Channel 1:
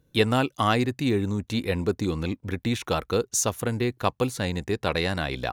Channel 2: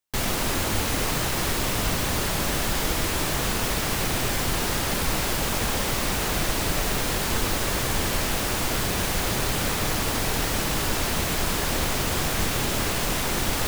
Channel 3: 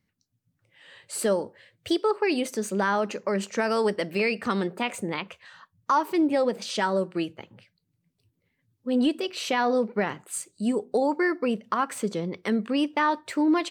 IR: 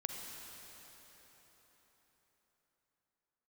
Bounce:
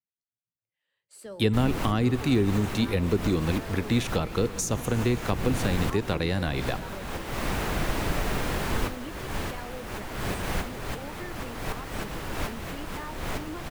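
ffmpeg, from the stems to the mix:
-filter_complex "[0:a]adelay=1250,volume=0.5dB,asplit=2[link_01][link_02];[link_02]volume=-12dB[link_03];[1:a]acrossover=split=2800[link_04][link_05];[link_05]acompressor=threshold=-37dB:ratio=4:attack=1:release=60[link_06];[link_04][link_06]amix=inputs=2:normalize=0,adelay=1400,volume=-1.5dB,asplit=2[link_07][link_08];[link_08]volume=-19.5dB[link_09];[2:a]agate=range=-13dB:threshold=-47dB:ratio=16:detection=peak,volume=-19dB,asplit=3[link_10][link_11][link_12];[link_11]volume=-14.5dB[link_13];[link_12]apad=whole_len=664603[link_14];[link_07][link_14]sidechaincompress=threshold=-54dB:ratio=8:attack=34:release=242[link_15];[3:a]atrim=start_sample=2205[link_16];[link_03][link_09][link_13]amix=inputs=3:normalize=0[link_17];[link_17][link_16]afir=irnorm=-1:irlink=0[link_18];[link_01][link_15][link_10][link_18]amix=inputs=4:normalize=0,acrossover=split=350[link_19][link_20];[link_20]acompressor=threshold=-28dB:ratio=6[link_21];[link_19][link_21]amix=inputs=2:normalize=0"

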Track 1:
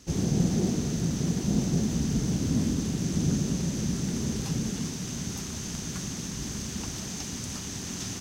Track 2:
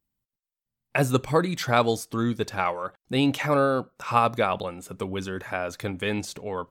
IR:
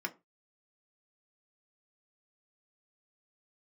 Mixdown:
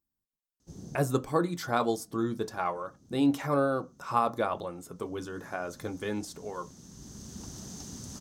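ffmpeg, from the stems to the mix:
-filter_complex "[0:a]adelay=600,volume=-6.5dB,afade=type=in:start_time=5.18:duration=0.54:silence=0.281838[link_01];[1:a]flanger=delay=3.3:depth=2.9:regen=-76:speed=0.66:shape=sinusoidal,volume=-2.5dB,asplit=3[link_02][link_03][link_04];[link_03]volume=-5dB[link_05];[link_04]apad=whole_len=388343[link_06];[link_01][link_06]sidechaincompress=threshold=-44dB:ratio=12:attack=22:release=1180[link_07];[2:a]atrim=start_sample=2205[link_08];[link_05][link_08]afir=irnorm=-1:irlink=0[link_09];[link_07][link_02][link_09]amix=inputs=3:normalize=0,equalizer=frequency=2400:width=1.3:gain=-12"

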